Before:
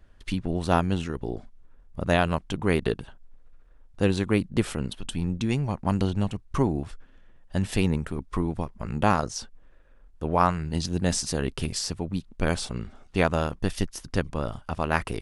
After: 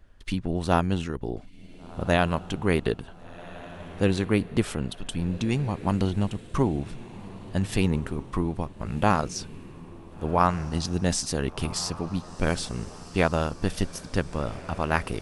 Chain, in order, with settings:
feedback delay with all-pass diffusion 1,474 ms, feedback 43%, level −16 dB

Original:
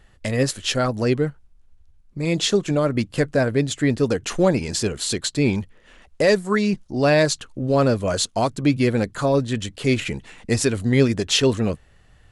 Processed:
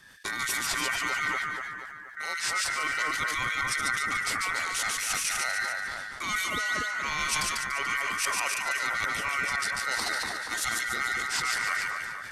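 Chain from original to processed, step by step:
high-shelf EQ 2,800 Hz +11.5 dB
reversed playback
downward compressor 10 to 1, threshold −26 dBFS, peak gain reduction 18.5 dB
reversed playback
frequency shifter +25 Hz
ring modulation 1,700 Hz
on a send: echo with a time of its own for lows and highs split 1,800 Hz, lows 239 ms, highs 145 ms, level −3 dB
on the sum: level that may fall only so fast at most 23 dB per second

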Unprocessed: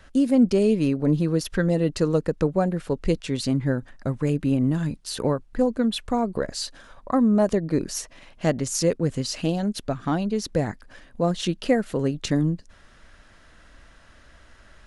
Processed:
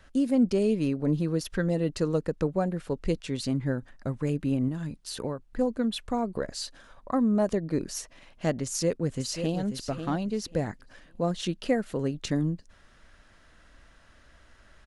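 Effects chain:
0:04.68–0:05.50: downward compressor 2 to 1, threshold −27 dBFS, peak gain reduction 5.5 dB
0:08.65–0:09.62: delay throw 540 ms, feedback 20%, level −8.5 dB
level −5 dB

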